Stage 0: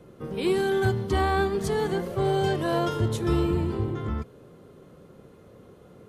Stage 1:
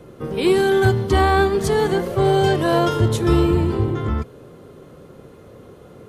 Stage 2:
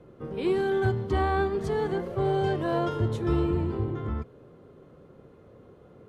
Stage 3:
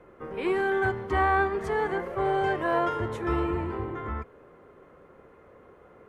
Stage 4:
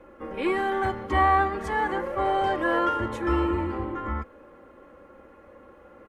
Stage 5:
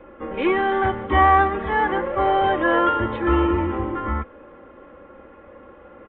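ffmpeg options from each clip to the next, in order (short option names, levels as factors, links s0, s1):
-af "equalizer=f=190:w=4.7:g=-4.5,volume=2.51"
-af "lowpass=f=2000:p=1,volume=0.355"
-af "equalizer=f=125:t=o:w=1:g=-10,equalizer=f=250:t=o:w=1:g=-3,equalizer=f=1000:t=o:w=1:g=5,equalizer=f=2000:t=o:w=1:g=9,equalizer=f=4000:t=o:w=1:g=-7"
-af "aecho=1:1:3.6:0.7,volume=1.19"
-af "aresample=8000,aresample=44100,volume=1.88"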